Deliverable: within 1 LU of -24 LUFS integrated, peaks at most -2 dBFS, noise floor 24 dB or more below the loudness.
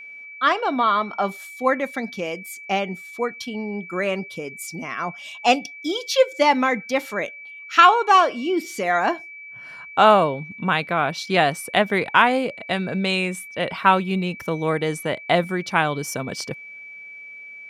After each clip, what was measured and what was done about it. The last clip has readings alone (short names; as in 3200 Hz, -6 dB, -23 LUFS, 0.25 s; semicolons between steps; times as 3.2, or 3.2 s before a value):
steady tone 2300 Hz; tone level -37 dBFS; loudness -21.5 LUFS; peak -2.0 dBFS; loudness target -24.0 LUFS
-> notch 2300 Hz, Q 30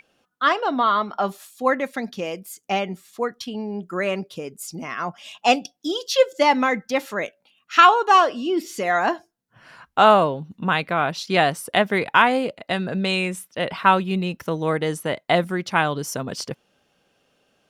steady tone none; loudness -21.5 LUFS; peak -2.0 dBFS; loudness target -24.0 LUFS
-> gain -2.5 dB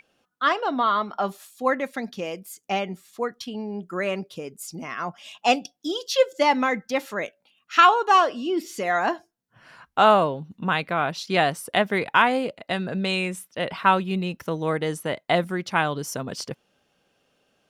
loudness -24.0 LUFS; peak -4.5 dBFS; noise floor -71 dBFS